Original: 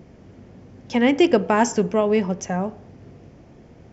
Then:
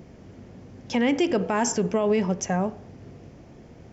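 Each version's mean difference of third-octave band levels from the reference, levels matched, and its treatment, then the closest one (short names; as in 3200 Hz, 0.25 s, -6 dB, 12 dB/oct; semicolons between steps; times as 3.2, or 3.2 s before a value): 3.0 dB: high shelf 5400 Hz +4.5 dB; limiter -14 dBFS, peak gain reduction 10 dB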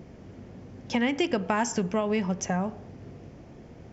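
4.5 dB: dynamic EQ 420 Hz, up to -7 dB, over -30 dBFS, Q 0.87; compressor 5:1, threshold -22 dBFS, peak gain reduction 7 dB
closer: first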